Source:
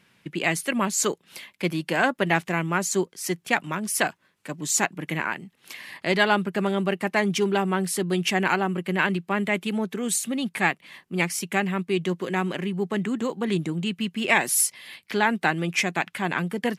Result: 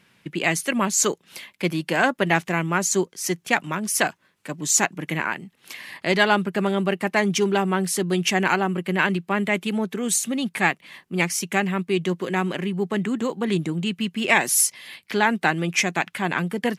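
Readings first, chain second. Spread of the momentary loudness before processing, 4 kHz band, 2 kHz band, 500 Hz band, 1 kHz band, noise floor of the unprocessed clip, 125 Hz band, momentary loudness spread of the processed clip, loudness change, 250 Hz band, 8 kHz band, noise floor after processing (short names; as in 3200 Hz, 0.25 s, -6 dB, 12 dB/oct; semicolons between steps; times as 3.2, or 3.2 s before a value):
9 LU, +2.5 dB, +2.0 dB, +2.0 dB, +2.0 dB, -65 dBFS, +2.0 dB, 8 LU, +2.5 dB, +2.0 dB, +4.0 dB, -63 dBFS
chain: dynamic EQ 6200 Hz, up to +5 dB, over -48 dBFS, Q 3.6; gain +2 dB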